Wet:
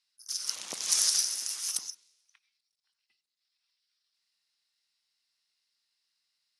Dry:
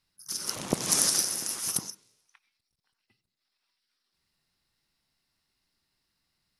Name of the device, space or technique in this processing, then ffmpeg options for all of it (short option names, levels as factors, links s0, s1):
piezo pickup straight into a mixer: -af "lowpass=5400,aderivative,volume=2.11"